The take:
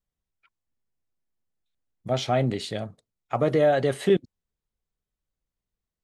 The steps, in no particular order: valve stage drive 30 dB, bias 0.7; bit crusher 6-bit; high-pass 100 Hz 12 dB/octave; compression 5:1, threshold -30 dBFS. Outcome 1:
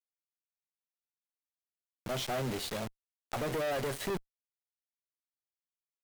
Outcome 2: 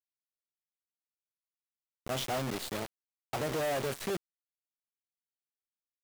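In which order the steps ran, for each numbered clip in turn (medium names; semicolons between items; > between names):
high-pass > bit crusher > valve stage > compression; valve stage > high-pass > compression > bit crusher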